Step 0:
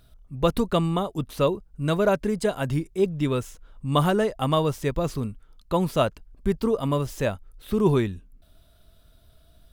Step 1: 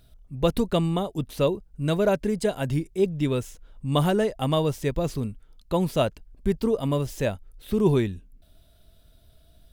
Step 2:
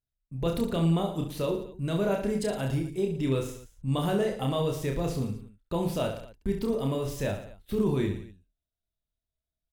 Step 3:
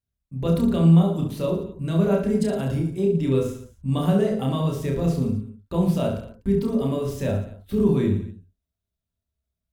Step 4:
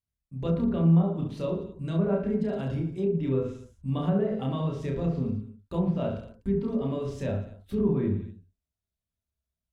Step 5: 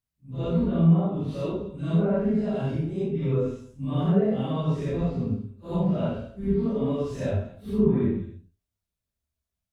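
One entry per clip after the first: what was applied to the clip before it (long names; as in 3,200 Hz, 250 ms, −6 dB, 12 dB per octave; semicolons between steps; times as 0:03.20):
parametric band 1,200 Hz −6.5 dB 0.69 octaves
noise gate −43 dBFS, range −33 dB; brickwall limiter −17 dBFS, peak gain reduction 8 dB; on a send: reverse bouncing-ball delay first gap 30 ms, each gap 1.25×, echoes 5; on the sum: level −3.5 dB
on a send at −2.5 dB: Butterworth low-pass 1,700 Hz 48 dB per octave + convolution reverb, pre-delay 3 ms
treble cut that deepens with the level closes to 1,700 Hz, closed at −16 dBFS; level −5.5 dB
random phases in long frames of 200 ms; level +2.5 dB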